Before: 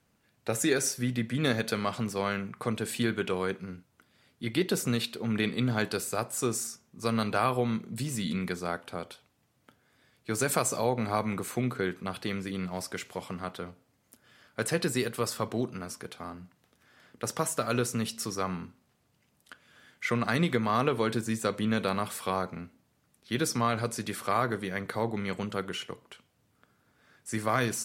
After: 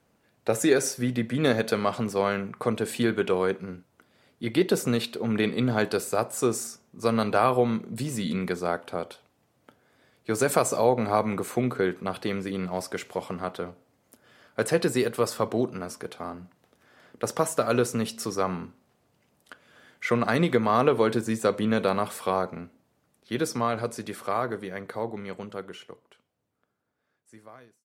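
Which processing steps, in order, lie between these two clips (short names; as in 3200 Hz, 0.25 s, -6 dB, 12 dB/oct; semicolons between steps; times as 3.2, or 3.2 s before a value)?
ending faded out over 6.21 s; bell 540 Hz +7.5 dB 2.3 oct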